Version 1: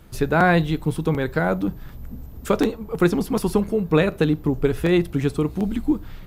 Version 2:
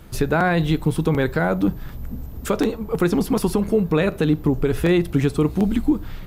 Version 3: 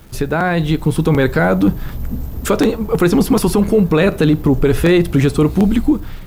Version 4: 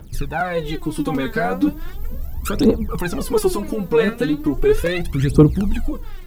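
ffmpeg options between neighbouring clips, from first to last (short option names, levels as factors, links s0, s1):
-af "alimiter=limit=0.224:level=0:latency=1:release=103,volume=1.68"
-af "dynaudnorm=f=360:g=5:m=3.16,apsyclip=2.24,acrusher=bits=8:dc=4:mix=0:aa=0.000001,volume=0.531"
-af "aphaser=in_gain=1:out_gain=1:delay=4.6:decay=0.8:speed=0.37:type=triangular,volume=0.335"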